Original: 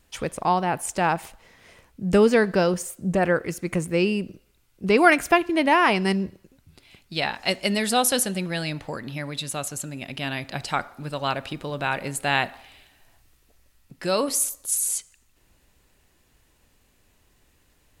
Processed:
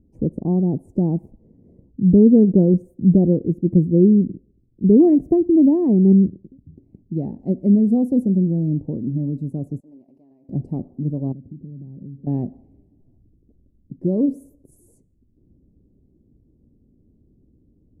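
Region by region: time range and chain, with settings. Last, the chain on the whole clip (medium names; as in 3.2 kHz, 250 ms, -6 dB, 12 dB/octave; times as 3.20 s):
9.80–10.49 s: Chebyshev high-pass 830 Hz + compression 16:1, threshold -38 dBFS + loudspeaker Doppler distortion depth 0.3 ms
11.32–12.27 s: band-pass filter 150 Hz, Q 1.2 + compression 8:1, threshold -43 dBFS
whole clip: inverse Chebyshev low-pass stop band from 1.3 kHz, stop band 70 dB; tilt EQ +4 dB/octave; loudness maximiser +25 dB; trim -3 dB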